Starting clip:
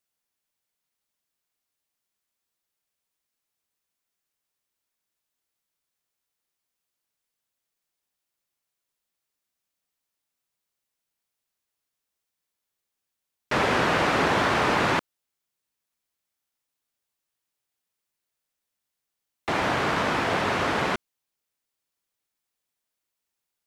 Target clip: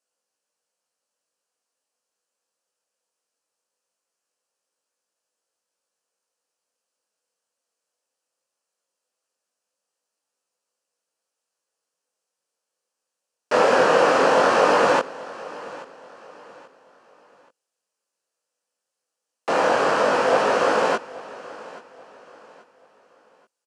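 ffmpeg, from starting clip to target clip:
ffmpeg -i in.wav -af "highpass=300,equalizer=frequency=350:width_type=q:width=4:gain=-4,equalizer=frequency=510:width_type=q:width=4:gain=10,equalizer=frequency=2100:width_type=q:width=4:gain=-10,equalizer=frequency=3600:width_type=q:width=4:gain=-9,lowpass=frequency=9700:width=0.5412,lowpass=frequency=9700:width=1.3066,flanger=delay=18:depth=6.7:speed=0.19,aecho=1:1:831|1662|2493:0.112|0.0393|0.0137,volume=8dB" out.wav

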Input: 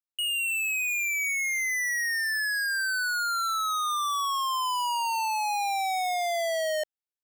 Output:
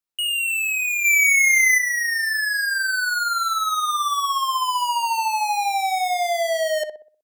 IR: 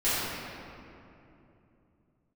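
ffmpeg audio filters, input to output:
-filter_complex "[0:a]asplit=3[link_01][link_02][link_03];[link_01]afade=type=out:start_time=1.04:duration=0.02[link_04];[link_02]acontrast=78,afade=type=in:start_time=1.04:duration=0.02,afade=type=out:start_time=1.77:duration=0.02[link_05];[link_03]afade=type=in:start_time=1.77:duration=0.02[link_06];[link_04][link_05][link_06]amix=inputs=3:normalize=0,asplit=2[link_07][link_08];[link_08]adelay=62,lowpass=frequency=1200:poles=1,volume=-5dB,asplit=2[link_09][link_10];[link_10]adelay=62,lowpass=frequency=1200:poles=1,volume=0.45,asplit=2[link_11][link_12];[link_12]adelay=62,lowpass=frequency=1200:poles=1,volume=0.45,asplit=2[link_13][link_14];[link_14]adelay=62,lowpass=frequency=1200:poles=1,volume=0.45,asplit=2[link_15][link_16];[link_16]adelay=62,lowpass=frequency=1200:poles=1,volume=0.45,asplit=2[link_17][link_18];[link_18]adelay=62,lowpass=frequency=1200:poles=1,volume=0.45[link_19];[link_07][link_09][link_11][link_13][link_15][link_17][link_19]amix=inputs=7:normalize=0,volume=5dB"

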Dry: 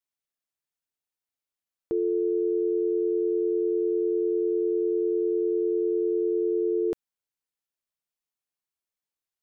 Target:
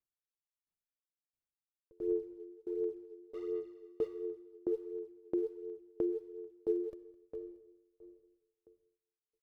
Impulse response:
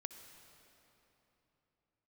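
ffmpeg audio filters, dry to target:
-filter_complex "[0:a]lowshelf=frequency=280:gain=10.5,asettb=1/sr,asplit=3[link_01][link_02][link_03];[link_01]atrim=end=3.344[link_04];[link_02]atrim=start=3.34:end=4.07,asetpts=PTS-STARTPTS,afade=type=in:duration=0.004:curve=qsin,afade=type=out:start_time=0.726:duration=0.004:curve=qsin,adynamicsmooth=sensitivity=7.5:basefreq=530[link_05];[link_03]atrim=start=4.066[link_06];[link_04][link_05]acrossfade=duration=0.004:curve1=hsin:curve2=qsin[link_07];[link_07][link_06]acrossfade=duration=0.004:curve1=qsin:curve2=hsin,aphaser=in_gain=1:out_gain=1:delay=2.7:decay=0.68:speed=1.4:type=sinusoidal,aecho=1:1:210|420|630|840|1050:0.251|0.126|0.0628|0.0314|0.0157[link_08];[1:a]atrim=start_sample=2205[link_09];[link_08][link_09]afir=irnorm=-1:irlink=0,aeval=exprs='val(0)*pow(10,-31*if(lt(mod(1.5*n/s,1),2*abs(1.5)/1000),1-mod(1.5*n/s,1)/(2*abs(1.5)/1000),(mod(1.5*n/s,1)-2*abs(1.5)/1000)/(1-2*abs(1.5)/1000))/20)':channel_layout=same,volume=-7.5dB"

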